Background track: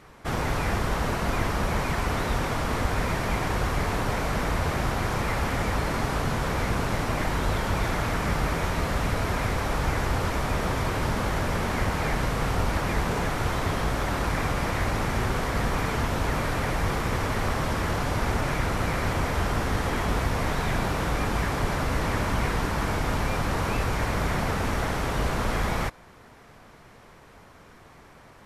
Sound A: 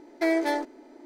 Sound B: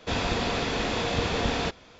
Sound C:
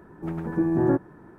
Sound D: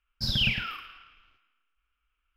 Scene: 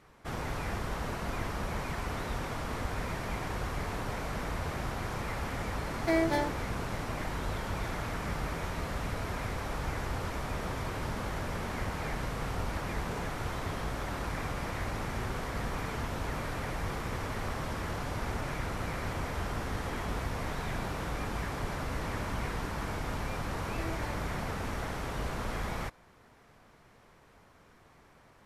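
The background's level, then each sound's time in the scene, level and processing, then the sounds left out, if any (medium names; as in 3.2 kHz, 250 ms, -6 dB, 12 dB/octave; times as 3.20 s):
background track -9 dB
5.86 s: add A -3.5 dB
23.56 s: add A -14.5 dB + three-phase chorus
not used: B, C, D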